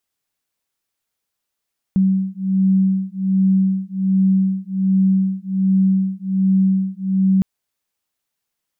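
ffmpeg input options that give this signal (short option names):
-f lavfi -i "aevalsrc='0.141*(sin(2*PI*190*t)+sin(2*PI*191.3*t))':d=5.46:s=44100"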